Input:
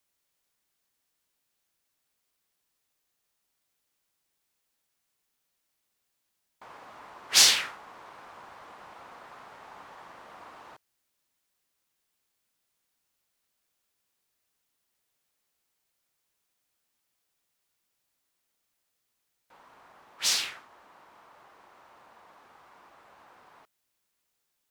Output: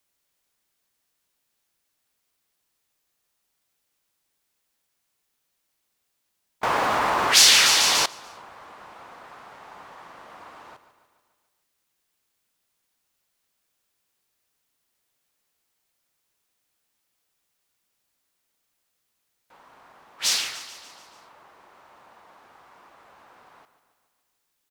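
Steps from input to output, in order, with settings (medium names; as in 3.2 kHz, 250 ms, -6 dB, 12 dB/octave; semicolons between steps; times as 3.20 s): feedback delay 145 ms, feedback 57%, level -13 dB; 6.63–8.06 s: level flattener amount 70%; trim +3 dB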